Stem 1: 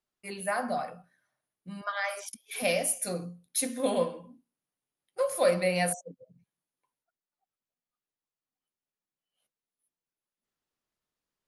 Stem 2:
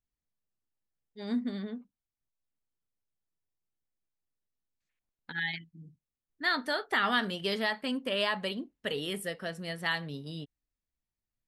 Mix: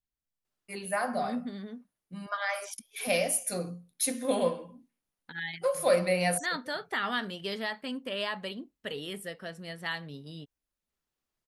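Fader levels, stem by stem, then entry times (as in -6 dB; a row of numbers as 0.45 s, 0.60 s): 0.0 dB, -3.5 dB; 0.45 s, 0.00 s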